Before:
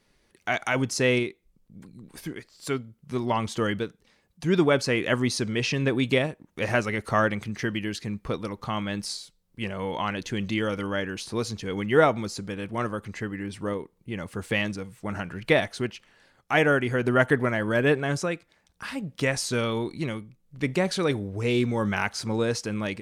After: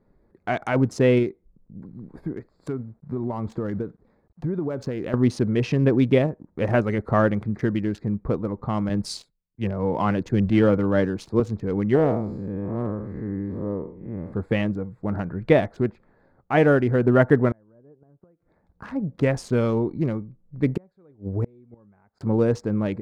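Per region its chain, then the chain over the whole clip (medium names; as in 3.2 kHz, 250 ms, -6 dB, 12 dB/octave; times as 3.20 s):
1.88–5.14 s: companded quantiser 6-bit + compression 10:1, threshold -28 dBFS
8.89–11.40 s: waveshaping leveller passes 1 + three bands expanded up and down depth 100%
11.95–14.33 s: spectral blur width 198 ms + peaking EQ 1.4 kHz -8 dB 0.23 oct
17.51–19.08 s: low-pass that closes with the level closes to 1 kHz, closed at -21.5 dBFS + inverted gate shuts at -22 dBFS, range -35 dB
20.68–22.21 s: treble shelf 11 kHz +5 dB + inverted gate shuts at -20 dBFS, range -34 dB
whole clip: local Wiener filter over 15 samples; tilt shelf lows +8 dB, about 1.4 kHz; trim -1 dB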